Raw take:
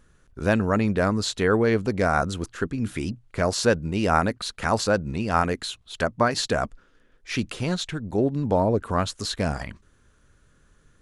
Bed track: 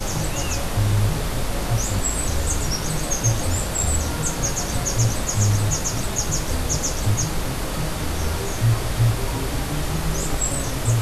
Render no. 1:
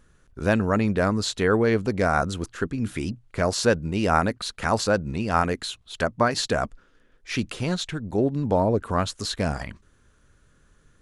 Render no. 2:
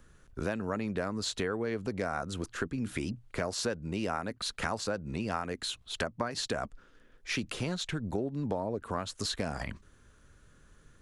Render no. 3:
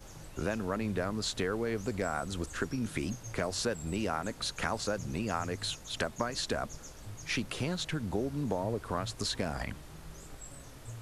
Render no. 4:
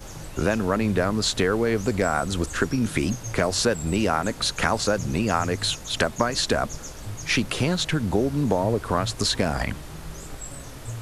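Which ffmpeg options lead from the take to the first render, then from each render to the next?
-af anull
-filter_complex "[0:a]acrossover=split=170|940|4900[s0][s1][s2][s3];[s0]alimiter=level_in=2.11:limit=0.0631:level=0:latency=1,volume=0.473[s4];[s4][s1][s2][s3]amix=inputs=4:normalize=0,acompressor=threshold=0.0316:ratio=6"
-filter_complex "[1:a]volume=0.0562[s0];[0:a][s0]amix=inputs=2:normalize=0"
-af "volume=3.35"

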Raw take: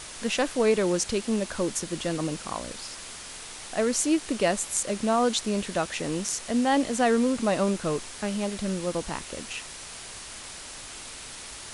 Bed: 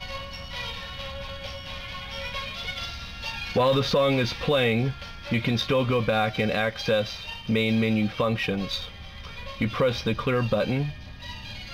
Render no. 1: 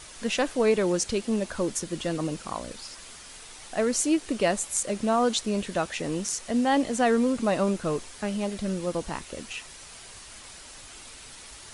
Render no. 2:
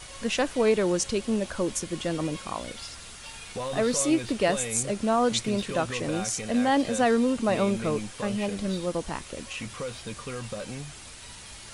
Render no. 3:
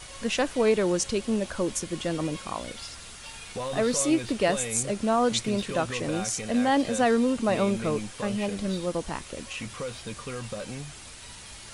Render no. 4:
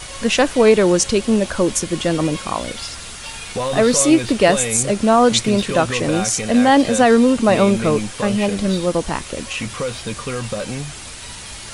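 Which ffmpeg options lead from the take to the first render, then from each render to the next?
-af "afftdn=nr=6:nf=-41"
-filter_complex "[1:a]volume=0.251[s0];[0:a][s0]amix=inputs=2:normalize=0"
-af anull
-af "volume=3.35,alimiter=limit=0.794:level=0:latency=1"

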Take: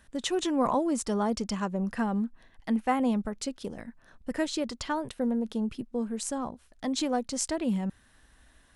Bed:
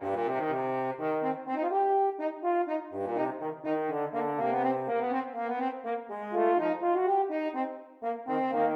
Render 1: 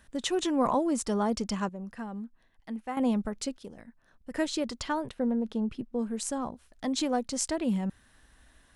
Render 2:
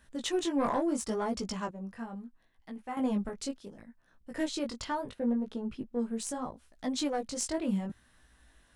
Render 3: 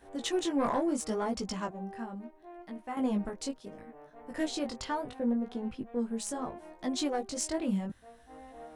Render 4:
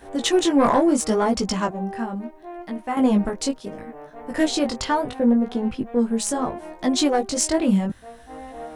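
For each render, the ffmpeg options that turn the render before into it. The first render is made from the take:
-filter_complex "[0:a]asettb=1/sr,asplit=3[s0][s1][s2];[s0]atrim=end=5.064[s3];[s1]atrim=start=5.06:end=5.99,asetpts=PTS-STARTPTS,afade=t=in:d=0.004:c=qsin,afade=t=out:st=0.926:d=0.004:c=qsin,lowpass=f=3200:p=1[s4];[s2]atrim=start=5.986[s5];[s3][s4]acrossfade=d=0.004:c1=hsin:c2=qsin[s6];[s6][s5]acrossfade=d=0.004:c1=qsin:c2=hsin,asplit=5[s7][s8][s9][s10][s11];[s7]atrim=end=1.692[s12];[s8]atrim=start=1.688:end=2.972,asetpts=PTS-STARTPTS,volume=0.335[s13];[s9]atrim=start=2.968:end=3.582[s14];[s10]atrim=start=3.578:end=4.342,asetpts=PTS-STARTPTS,volume=0.422[s15];[s11]atrim=start=4.338[s16];[s12][s13]acrossfade=d=0.004:c1=hsin:c2=hsin[s17];[s17][s14]acrossfade=d=0.004:c1=hsin:c2=hsin[s18];[s18][s15]acrossfade=d=0.004:c1=hsin:c2=hsin[s19];[s19][s16]acrossfade=d=0.004:c1=hsin:c2=hsin"
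-af "aeval=exprs='0.282*(cos(1*acos(clip(val(0)/0.282,-1,1)))-cos(1*PI/2))+0.0501*(cos(6*acos(clip(val(0)/0.282,-1,1)))-cos(6*PI/2))+0.0316*(cos(8*acos(clip(val(0)/0.282,-1,1)))-cos(8*PI/2))':c=same,flanger=delay=16:depth=5.8:speed=0.73"
-filter_complex "[1:a]volume=0.0891[s0];[0:a][s0]amix=inputs=2:normalize=0"
-af "volume=3.98"

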